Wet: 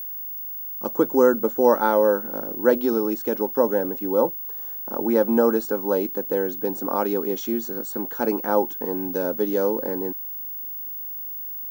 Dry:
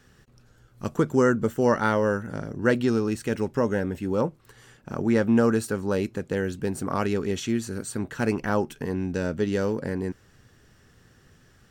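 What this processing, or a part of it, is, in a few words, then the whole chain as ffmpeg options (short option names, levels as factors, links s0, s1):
old television with a line whistle: -af "highpass=f=220:w=0.5412,highpass=f=220:w=1.3066,equalizer=f=310:t=q:w=4:g=4,equalizer=f=520:t=q:w=4:g=7,equalizer=f=850:t=q:w=4:g=9,equalizer=f=1900:t=q:w=4:g=-9,equalizer=f=2700:t=q:w=4:g=-10,equalizer=f=4700:t=q:w=4:g=-3,lowpass=f=7200:w=0.5412,lowpass=f=7200:w=1.3066,aeval=exprs='val(0)+0.0316*sin(2*PI*15625*n/s)':c=same"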